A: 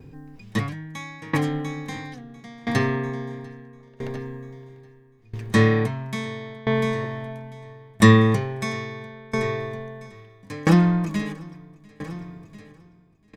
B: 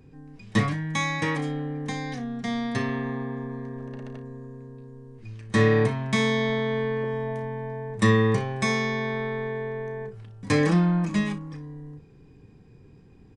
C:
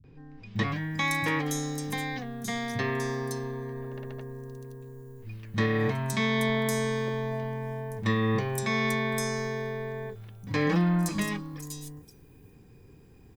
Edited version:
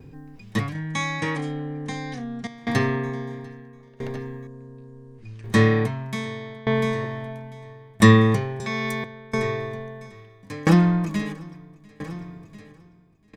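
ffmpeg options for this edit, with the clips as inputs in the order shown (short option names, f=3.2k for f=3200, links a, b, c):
-filter_complex "[1:a]asplit=2[a][b];[0:a]asplit=4[c][d][e][f];[c]atrim=end=0.752[g];[a]atrim=start=0.748:end=2.472[h];[d]atrim=start=2.468:end=4.472[i];[b]atrim=start=4.468:end=5.442[j];[e]atrim=start=5.438:end=8.602[k];[2:a]atrim=start=8.598:end=9.042[l];[f]atrim=start=9.038[m];[g][h]acrossfade=d=0.004:c1=hsin:c2=hsin[n];[n][i]acrossfade=d=0.004:c1=hsin:c2=hsin[o];[o][j]acrossfade=d=0.004:c1=hsin:c2=hsin[p];[p][k]acrossfade=d=0.004:c1=hsin:c2=hsin[q];[q][l]acrossfade=d=0.004:c1=hsin:c2=hsin[r];[r][m]acrossfade=d=0.004:c1=hsin:c2=hsin"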